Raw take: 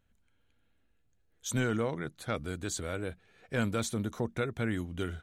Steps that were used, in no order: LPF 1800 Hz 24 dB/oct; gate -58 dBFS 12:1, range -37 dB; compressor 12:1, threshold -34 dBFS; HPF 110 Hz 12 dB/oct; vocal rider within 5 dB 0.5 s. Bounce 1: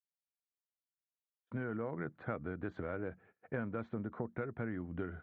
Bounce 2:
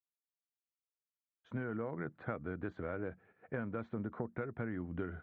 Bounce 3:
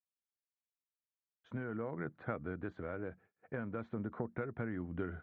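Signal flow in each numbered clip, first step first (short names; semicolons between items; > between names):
LPF > gate > vocal rider > compressor > HPF; vocal rider > gate > HPF > compressor > LPF; HPF > compressor > gate > vocal rider > LPF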